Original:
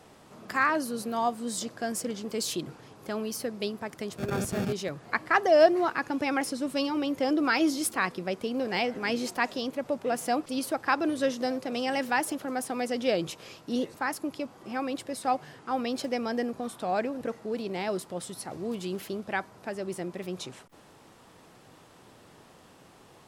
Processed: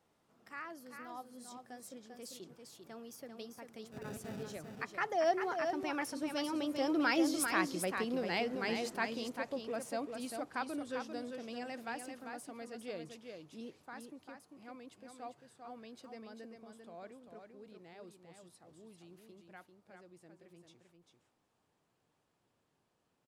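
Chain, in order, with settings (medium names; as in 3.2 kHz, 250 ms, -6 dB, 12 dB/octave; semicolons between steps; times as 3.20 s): Doppler pass-by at 7.61 s, 22 m/s, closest 29 m; delay 395 ms -6 dB; trim -5.5 dB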